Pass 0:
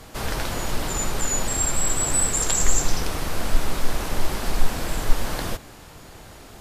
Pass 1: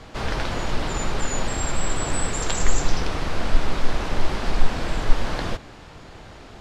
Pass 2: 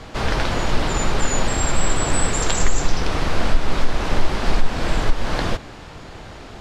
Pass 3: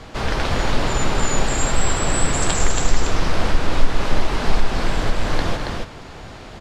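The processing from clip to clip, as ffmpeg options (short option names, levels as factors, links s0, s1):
-af "lowpass=4600,volume=1.19"
-af "alimiter=limit=0.316:level=0:latency=1:release=253,volume=1.78"
-af "aecho=1:1:207|277:0.282|0.631,volume=0.891"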